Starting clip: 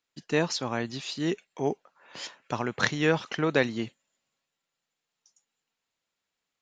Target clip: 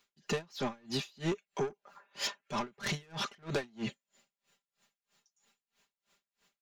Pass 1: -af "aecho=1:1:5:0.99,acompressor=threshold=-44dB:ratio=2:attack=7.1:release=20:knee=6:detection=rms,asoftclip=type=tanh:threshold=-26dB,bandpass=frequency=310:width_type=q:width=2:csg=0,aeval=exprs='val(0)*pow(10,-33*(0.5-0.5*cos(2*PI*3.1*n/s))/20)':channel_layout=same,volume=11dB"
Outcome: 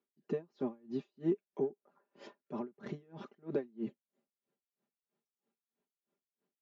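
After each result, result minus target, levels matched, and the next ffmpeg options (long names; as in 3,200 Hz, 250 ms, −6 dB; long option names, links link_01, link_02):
soft clipping: distortion −12 dB; 250 Hz band +3.5 dB
-af "aecho=1:1:5:0.99,acompressor=threshold=-44dB:ratio=2:attack=7.1:release=20:knee=6:detection=rms,asoftclip=type=tanh:threshold=-36.5dB,bandpass=frequency=310:width_type=q:width=2:csg=0,aeval=exprs='val(0)*pow(10,-33*(0.5-0.5*cos(2*PI*3.1*n/s))/20)':channel_layout=same,volume=11dB"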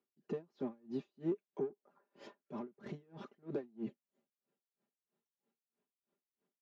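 250 Hz band +3.5 dB
-af "aecho=1:1:5:0.99,acompressor=threshold=-44dB:ratio=2:attack=7.1:release=20:knee=6:detection=rms,asoftclip=type=tanh:threshold=-36.5dB,aeval=exprs='val(0)*pow(10,-33*(0.5-0.5*cos(2*PI*3.1*n/s))/20)':channel_layout=same,volume=11dB"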